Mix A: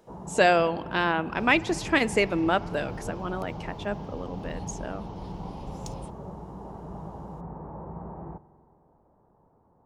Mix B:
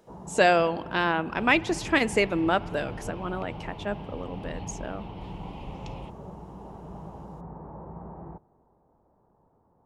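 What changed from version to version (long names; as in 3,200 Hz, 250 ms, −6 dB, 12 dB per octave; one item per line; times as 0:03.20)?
first sound: send −11.0 dB
second sound: add low-pass with resonance 2,700 Hz, resonance Q 2.8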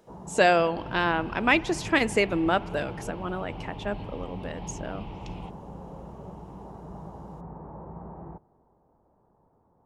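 second sound: entry −0.60 s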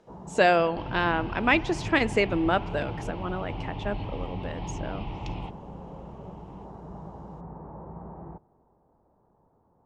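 second sound +5.5 dB
master: add high-frequency loss of the air 66 metres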